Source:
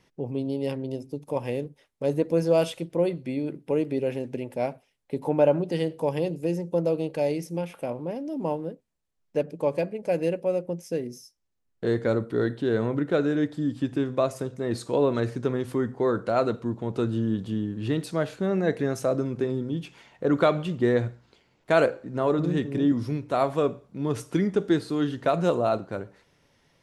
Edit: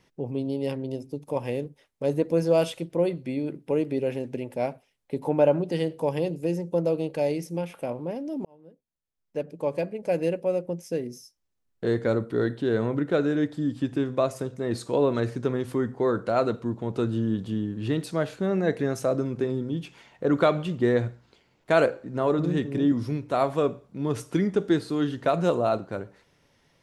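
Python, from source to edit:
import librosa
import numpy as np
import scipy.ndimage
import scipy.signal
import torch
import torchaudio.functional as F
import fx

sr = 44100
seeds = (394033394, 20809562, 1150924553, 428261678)

y = fx.edit(x, sr, fx.fade_in_span(start_s=8.45, length_s=1.6), tone=tone)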